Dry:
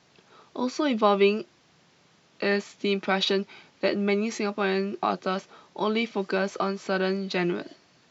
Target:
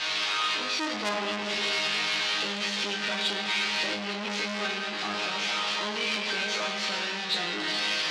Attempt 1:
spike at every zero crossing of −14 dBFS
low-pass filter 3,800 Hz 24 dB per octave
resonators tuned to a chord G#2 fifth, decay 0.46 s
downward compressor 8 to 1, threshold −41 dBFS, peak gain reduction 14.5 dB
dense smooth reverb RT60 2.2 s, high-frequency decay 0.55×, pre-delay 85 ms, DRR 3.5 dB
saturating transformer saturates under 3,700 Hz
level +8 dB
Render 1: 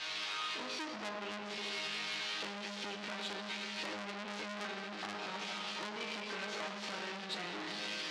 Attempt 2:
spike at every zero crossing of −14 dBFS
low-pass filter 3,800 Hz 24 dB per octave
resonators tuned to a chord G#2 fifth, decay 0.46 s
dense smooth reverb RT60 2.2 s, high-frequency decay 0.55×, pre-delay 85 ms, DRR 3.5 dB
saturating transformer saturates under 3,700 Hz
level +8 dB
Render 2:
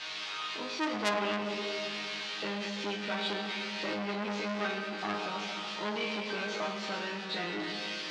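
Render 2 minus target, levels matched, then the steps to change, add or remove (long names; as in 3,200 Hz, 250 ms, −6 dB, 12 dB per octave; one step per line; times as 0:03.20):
spike at every zero crossing: distortion −11 dB
change: spike at every zero crossing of −3 dBFS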